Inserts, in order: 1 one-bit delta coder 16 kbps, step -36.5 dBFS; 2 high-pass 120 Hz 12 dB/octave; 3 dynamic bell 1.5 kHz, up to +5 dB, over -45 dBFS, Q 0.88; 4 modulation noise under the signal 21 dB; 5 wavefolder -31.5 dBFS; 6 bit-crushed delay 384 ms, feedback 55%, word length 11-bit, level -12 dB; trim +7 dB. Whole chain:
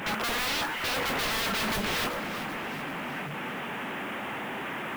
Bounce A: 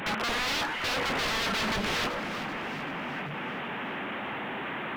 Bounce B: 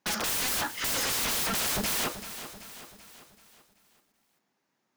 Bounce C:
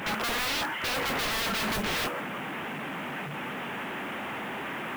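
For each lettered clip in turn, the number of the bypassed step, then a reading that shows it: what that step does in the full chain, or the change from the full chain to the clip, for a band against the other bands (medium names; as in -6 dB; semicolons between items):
4, 8 kHz band -3.0 dB; 1, 8 kHz band +13.5 dB; 6, crest factor change -3.0 dB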